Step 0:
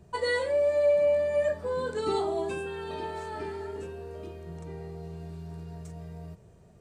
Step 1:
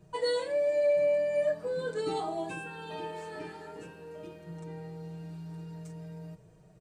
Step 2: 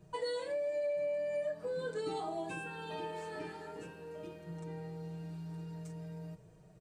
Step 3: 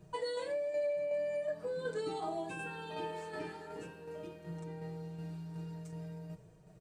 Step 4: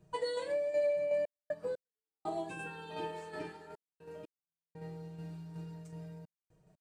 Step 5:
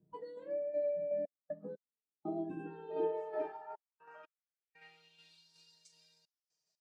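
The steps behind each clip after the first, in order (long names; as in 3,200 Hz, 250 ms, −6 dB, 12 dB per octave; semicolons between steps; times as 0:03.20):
comb filter 6.4 ms, depth 98%; level −5 dB
downward compressor 3 to 1, threshold −34 dBFS, peak gain reduction 8.5 dB; level −1.5 dB
shaped tremolo saw down 2.7 Hz, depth 40%; level +2 dB
gate pattern "xxxxx.x..x" 60 BPM −60 dB; expander for the loud parts 1.5 to 1, over −53 dBFS; level +4 dB
band-pass filter sweep 250 Hz → 4,600 Hz, 0:02.43–0:05.52; noise reduction from a noise print of the clip's start 10 dB; level +9.5 dB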